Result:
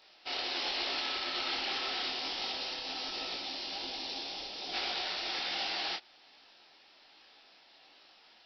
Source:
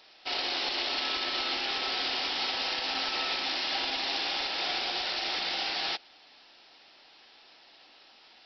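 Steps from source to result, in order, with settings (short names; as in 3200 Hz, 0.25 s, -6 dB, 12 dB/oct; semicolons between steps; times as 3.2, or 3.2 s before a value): 2.08–4.72 bell 1600 Hz -4.5 dB -> -14.5 dB 1.9 oct; detuned doubles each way 43 cents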